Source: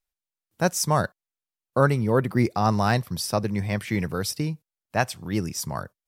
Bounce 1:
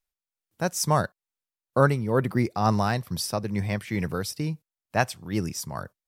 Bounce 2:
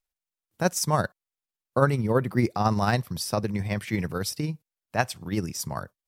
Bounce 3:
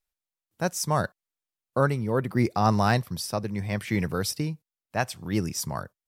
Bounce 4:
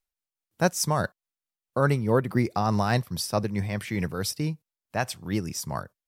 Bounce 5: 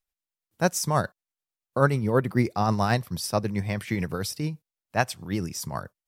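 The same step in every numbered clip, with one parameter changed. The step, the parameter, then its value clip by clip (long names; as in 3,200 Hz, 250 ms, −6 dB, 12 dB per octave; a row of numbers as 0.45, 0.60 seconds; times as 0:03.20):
amplitude tremolo, speed: 2.2, 18, 0.73, 4.7, 9.2 Hertz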